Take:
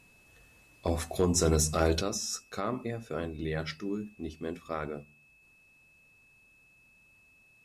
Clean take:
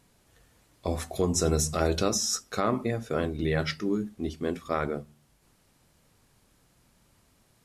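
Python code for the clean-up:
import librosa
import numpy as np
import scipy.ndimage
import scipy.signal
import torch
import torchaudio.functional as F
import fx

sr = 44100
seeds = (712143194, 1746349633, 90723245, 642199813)

y = fx.fix_declip(x, sr, threshold_db=-17.0)
y = fx.notch(y, sr, hz=2600.0, q=30.0)
y = fx.gain(y, sr, db=fx.steps((0.0, 0.0), (2.01, 6.5)))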